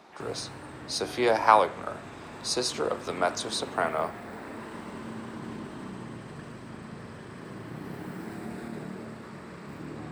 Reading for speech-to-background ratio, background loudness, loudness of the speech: 14.0 dB, -41.5 LUFS, -27.5 LUFS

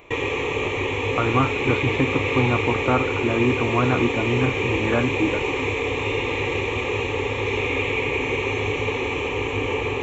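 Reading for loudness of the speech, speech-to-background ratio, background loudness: -24.5 LUFS, -1.0 dB, -23.5 LUFS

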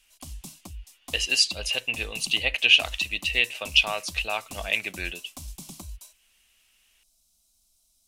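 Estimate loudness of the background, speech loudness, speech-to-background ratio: -42.5 LUFS, -23.5 LUFS, 19.0 dB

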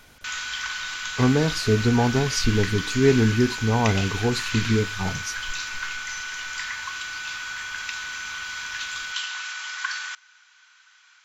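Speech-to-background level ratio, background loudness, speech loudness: 7.5 dB, -30.0 LUFS, -22.5 LUFS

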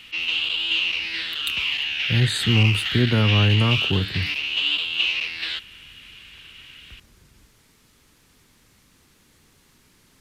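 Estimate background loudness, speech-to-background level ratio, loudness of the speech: -22.5 LUFS, 0.5 dB, -22.0 LUFS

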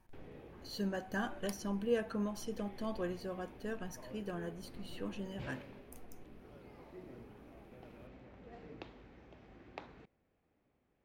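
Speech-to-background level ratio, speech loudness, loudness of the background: 14.0 dB, -40.5 LUFS, -54.5 LUFS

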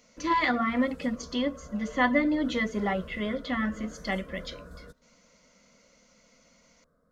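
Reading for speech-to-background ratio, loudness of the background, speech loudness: 18.5 dB, -47.5 LUFS, -29.0 LUFS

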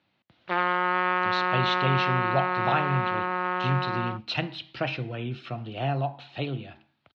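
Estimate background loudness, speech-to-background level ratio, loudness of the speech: -26.5 LUFS, -4.0 dB, -30.5 LUFS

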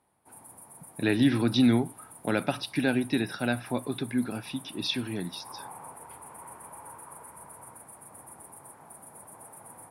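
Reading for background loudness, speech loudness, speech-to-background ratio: -46.5 LUFS, -28.5 LUFS, 18.0 dB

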